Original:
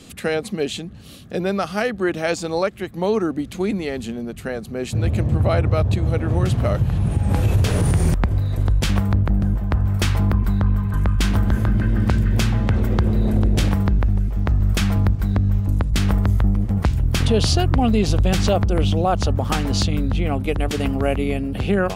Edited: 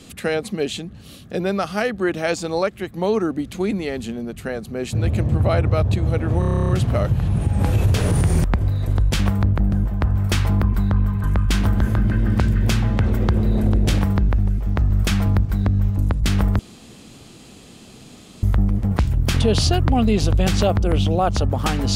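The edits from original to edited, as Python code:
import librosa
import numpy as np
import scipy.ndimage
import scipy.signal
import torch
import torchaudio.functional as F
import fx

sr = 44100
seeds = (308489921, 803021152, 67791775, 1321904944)

y = fx.edit(x, sr, fx.stutter(start_s=6.39, slice_s=0.03, count=11),
    fx.insert_room_tone(at_s=16.29, length_s=1.84), tone=tone)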